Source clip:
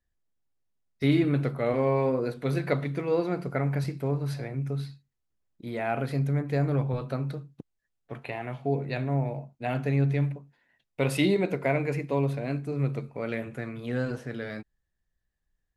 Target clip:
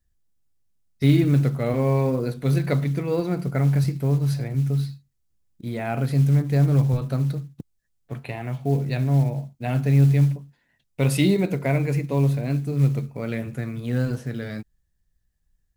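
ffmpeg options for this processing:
-af "bass=f=250:g=10,treble=f=4000:g=8,acrusher=bits=8:mode=log:mix=0:aa=0.000001"

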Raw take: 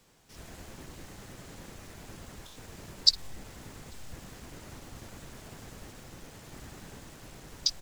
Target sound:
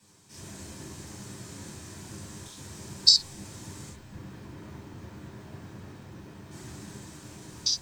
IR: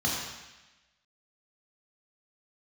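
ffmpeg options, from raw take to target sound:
-filter_complex "[0:a]asetnsamples=n=441:p=0,asendcmd='3.89 equalizer g -9.5;6.51 equalizer g 5',equalizer=f=8200:w=0.58:g=8.5[s0];[1:a]atrim=start_sample=2205,atrim=end_sample=4410,asetrate=57330,aresample=44100[s1];[s0][s1]afir=irnorm=-1:irlink=0,volume=0.473"

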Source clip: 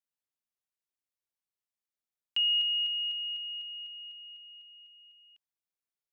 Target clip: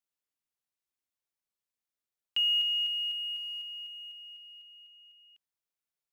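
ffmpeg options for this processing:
-af "acrusher=bits=8:mode=log:mix=0:aa=0.000001"

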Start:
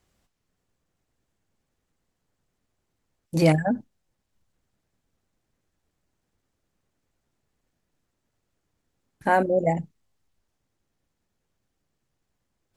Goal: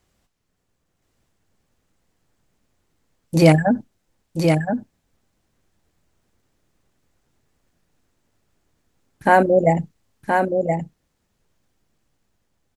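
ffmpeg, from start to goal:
-filter_complex "[0:a]dynaudnorm=f=390:g=5:m=1.58,asplit=2[s0][s1];[s1]aecho=0:1:1023:0.562[s2];[s0][s2]amix=inputs=2:normalize=0,volume=1.41"

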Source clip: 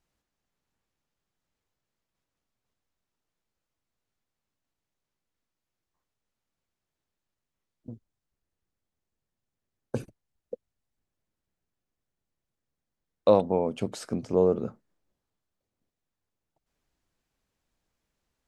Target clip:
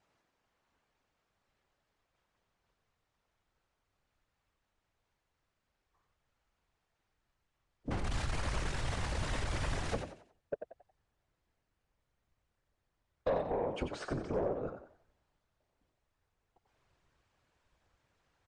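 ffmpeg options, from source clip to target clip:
-filter_complex "[0:a]asettb=1/sr,asplit=3[s0][s1][s2];[s0]atrim=end=7.914[s3];[s1]atrim=start=7.91:end=9.95,asetpts=PTS-STARTPTS,afade=t=in:d=0.004:c=qsin,afade=t=out:st=2.036:d=0.004:c=qsin,aeval=exprs='val(0)+0.5*0.0355*sgn(val(0))':c=same[s4];[s2]atrim=start=9.946[s5];[s3][s4]acrossfade=d=0.004:c1=hsin:c2=qsin[s6];[s6][s5]acrossfade=d=0.004:c1=qsin:c2=hsin,asettb=1/sr,asplit=3[s7][s8][s9];[s7]atrim=end=13.934[s10];[s8]atrim=start=13.93:end=14.68,asetpts=PTS-STARTPTS,afade=t=in:d=0.004:c=qsin,afade=t=out:st=0.746:d=0.004:c=qsin,highshelf=f=4000:g=-7.5[s11];[s9]atrim=start=14.676[s12];[s10][s11]acrossfade=d=0.004:c1=hsin:c2=qsin[s13];[s13][s12]acrossfade=d=0.004:c1=qsin:c2=hsin,asplit=2[s14][s15];[s15]alimiter=limit=0.106:level=0:latency=1:release=480,volume=1.19[s16];[s14][s16]amix=inputs=2:normalize=0,acompressor=threshold=0.0282:ratio=2.5,afftfilt=real='hypot(re,im)*cos(2*PI*random(0))':imag='hypot(re,im)*sin(2*PI*random(1))':win_size=512:overlap=0.75,asplit=2[s17][s18];[s18]highpass=f=720:p=1,volume=6.31,asoftclip=type=tanh:threshold=0.0841[s19];[s17][s19]amix=inputs=2:normalize=0,lowpass=f=1500:p=1,volume=0.501,asplit=5[s20][s21][s22][s23][s24];[s21]adelay=91,afreqshift=49,volume=0.398[s25];[s22]adelay=182,afreqshift=98,volume=0.132[s26];[s23]adelay=273,afreqshift=147,volume=0.0432[s27];[s24]adelay=364,afreqshift=196,volume=0.0143[s28];[s20][s25][s26][s27][s28]amix=inputs=5:normalize=0,asubboost=boost=3:cutoff=120" -ar 22050 -c:a aac -b:a 96k

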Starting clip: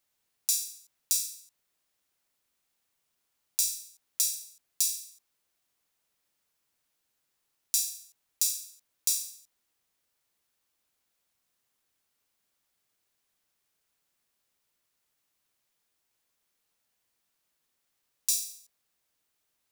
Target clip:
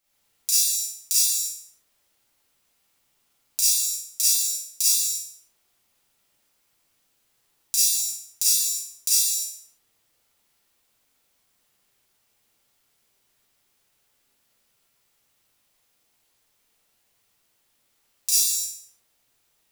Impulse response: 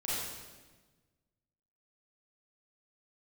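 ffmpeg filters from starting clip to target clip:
-filter_complex "[1:a]atrim=start_sample=2205,afade=t=out:st=0.4:d=0.01,atrim=end_sample=18081[s0];[0:a][s0]afir=irnorm=-1:irlink=0,volume=1.78"

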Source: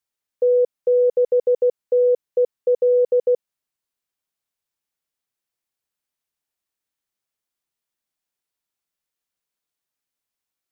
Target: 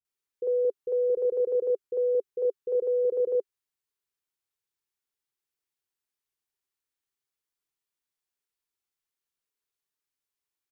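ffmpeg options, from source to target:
-filter_complex "[0:a]equalizer=f=200:t=o:w=0.33:g=-9,equalizer=f=400:t=o:w=0.33:g=8,equalizer=f=630:t=o:w=0.33:g=-7,acrossover=split=410[s0][s1];[s1]adelay=50[s2];[s0][s2]amix=inputs=2:normalize=0,volume=0.596"

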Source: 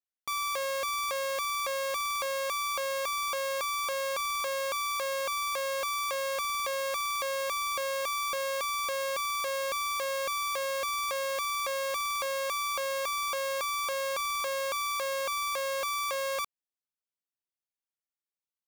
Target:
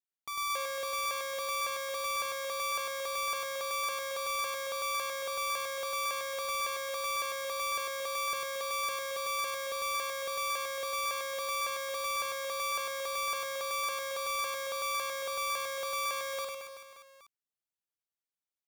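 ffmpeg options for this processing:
-af "aecho=1:1:100|225|381.2|576.6|820.7:0.631|0.398|0.251|0.158|0.1,volume=0.501"

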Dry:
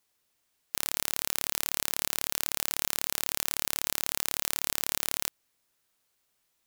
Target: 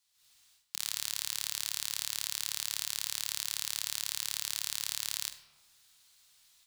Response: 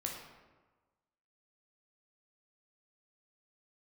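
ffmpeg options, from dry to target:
-filter_complex "[0:a]equalizer=f=250:t=o:w=1:g=-8,equalizer=f=500:t=o:w=1:g=-10,equalizer=f=4000:t=o:w=1:g=9,equalizer=f=8000:t=o:w=1:g=5,dynaudnorm=f=130:g=3:m=4.73,asplit=2[s0][s1];[1:a]atrim=start_sample=2205,adelay=46[s2];[s1][s2]afir=irnorm=-1:irlink=0,volume=0.316[s3];[s0][s3]amix=inputs=2:normalize=0,volume=0.447"

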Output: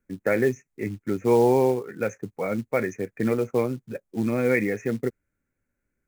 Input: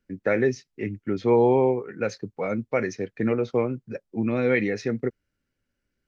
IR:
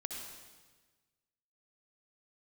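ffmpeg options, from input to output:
-af "asuperstop=centerf=4000:order=12:qfactor=1.1,acrusher=bits=6:mode=log:mix=0:aa=0.000001"

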